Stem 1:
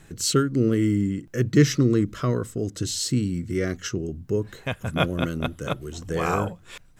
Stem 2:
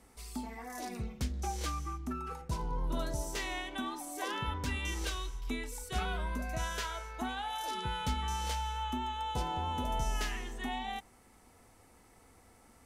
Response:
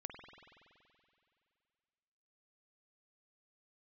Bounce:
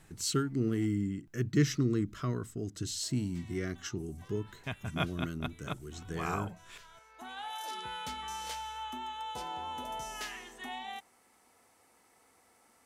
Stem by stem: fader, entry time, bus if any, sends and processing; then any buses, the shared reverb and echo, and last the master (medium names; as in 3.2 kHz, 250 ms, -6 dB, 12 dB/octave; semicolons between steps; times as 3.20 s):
-9.0 dB, 0.00 s, no send, peaking EQ 520 Hz -14.5 dB 0.25 oct
-1.5 dB, 0.00 s, muted 0.86–3.03 s, no send, high-pass 530 Hz 6 dB/octave; auto duck -18 dB, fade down 0.50 s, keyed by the first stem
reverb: none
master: none